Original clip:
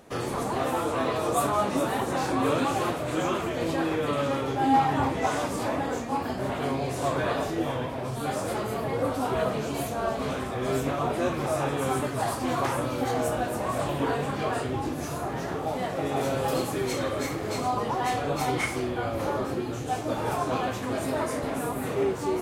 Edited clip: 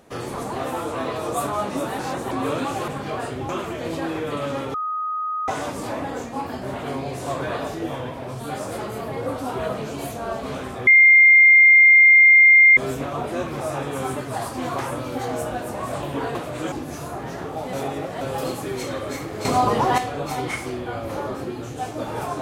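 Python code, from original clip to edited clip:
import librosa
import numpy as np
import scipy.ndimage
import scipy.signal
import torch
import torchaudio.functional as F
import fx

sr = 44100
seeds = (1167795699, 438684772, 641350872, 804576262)

y = fx.edit(x, sr, fx.reverse_span(start_s=1.99, length_s=0.32),
    fx.swap(start_s=2.88, length_s=0.37, other_s=14.21, other_length_s=0.61),
    fx.bleep(start_s=4.5, length_s=0.74, hz=1250.0, db=-23.0),
    fx.insert_tone(at_s=10.63, length_s=1.9, hz=2110.0, db=-8.0),
    fx.reverse_span(start_s=15.83, length_s=0.48),
    fx.clip_gain(start_s=17.55, length_s=0.53, db=8.5), tone=tone)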